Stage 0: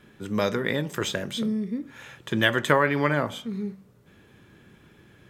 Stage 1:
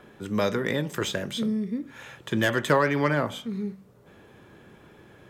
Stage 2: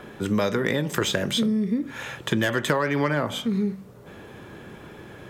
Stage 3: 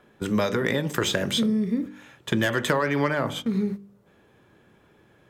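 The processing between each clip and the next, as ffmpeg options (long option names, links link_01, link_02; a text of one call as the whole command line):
ffmpeg -i in.wav -filter_complex "[0:a]acrossover=split=450|1000[link_01][link_02][link_03];[link_02]acompressor=mode=upward:threshold=-47dB:ratio=2.5[link_04];[link_03]asoftclip=type=tanh:threshold=-21dB[link_05];[link_01][link_04][link_05]amix=inputs=3:normalize=0" out.wav
ffmpeg -i in.wav -af "acompressor=threshold=-29dB:ratio=6,volume=9dB" out.wav
ffmpeg -i in.wav -af "agate=range=-15dB:threshold=-30dB:ratio=16:detection=peak,bandreject=frequency=49.93:width_type=h:width=4,bandreject=frequency=99.86:width_type=h:width=4,bandreject=frequency=149.79:width_type=h:width=4,bandreject=frequency=199.72:width_type=h:width=4,bandreject=frequency=249.65:width_type=h:width=4,bandreject=frequency=299.58:width_type=h:width=4,bandreject=frequency=349.51:width_type=h:width=4,bandreject=frequency=399.44:width_type=h:width=4,bandreject=frequency=449.37:width_type=h:width=4,bandreject=frequency=499.3:width_type=h:width=4" out.wav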